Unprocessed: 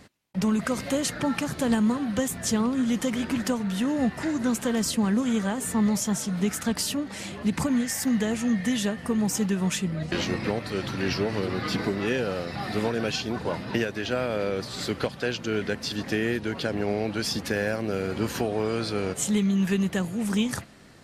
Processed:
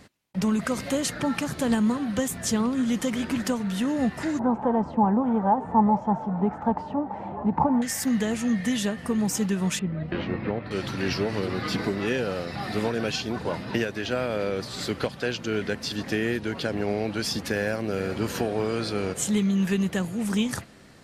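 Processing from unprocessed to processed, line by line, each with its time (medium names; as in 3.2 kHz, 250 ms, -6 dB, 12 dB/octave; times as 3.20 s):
4.39–7.82 s: resonant low-pass 860 Hz, resonance Q 7.7
9.79–10.71 s: distance through air 440 m
17.58–18.27 s: echo throw 390 ms, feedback 65%, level -13 dB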